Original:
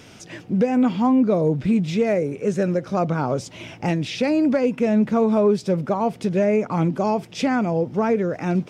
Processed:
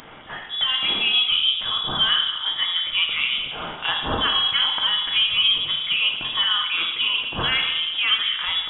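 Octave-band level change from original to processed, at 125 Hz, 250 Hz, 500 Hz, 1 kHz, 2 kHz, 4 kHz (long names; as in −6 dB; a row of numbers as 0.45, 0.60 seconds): −15.5, −22.0, −19.5, −3.0, +10.0, +24.0 decibels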